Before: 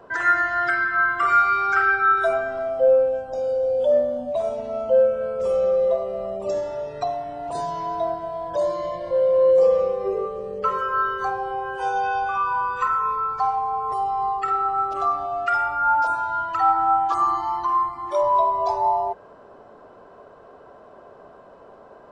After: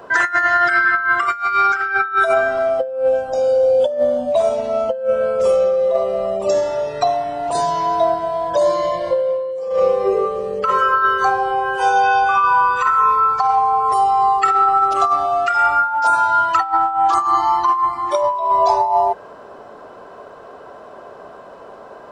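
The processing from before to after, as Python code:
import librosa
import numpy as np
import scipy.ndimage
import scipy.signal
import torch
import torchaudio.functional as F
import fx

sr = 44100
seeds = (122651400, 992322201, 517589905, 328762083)

y = fx.tilt_eq(x, sr, slope=1.5)
y = fx.over_compress(y, sr, threshold_db=-22.0, ratio=-0.5)
y = fx.high_shelf(y, sr, hz=4600.0, db=5.0, at=(13.85, 16.57))
y = F.gain(torch.from_numpy(y), 7.5).numpy()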